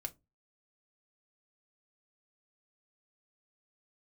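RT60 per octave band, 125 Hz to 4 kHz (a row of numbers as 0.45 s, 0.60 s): 0.40 s, 0.30 s, 0.25 s, 0.20 s, 0.15 s, 0.15 s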